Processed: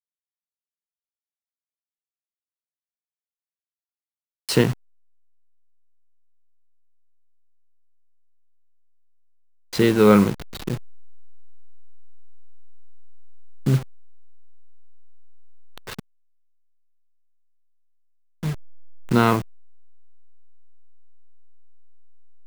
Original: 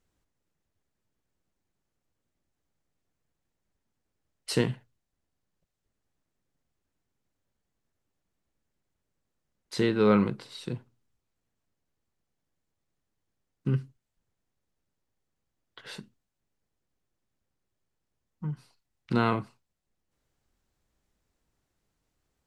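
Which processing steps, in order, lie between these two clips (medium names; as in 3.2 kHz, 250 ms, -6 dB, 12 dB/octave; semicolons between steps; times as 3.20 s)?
send-on-delta sampling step -35 dBFS; trim +8 dB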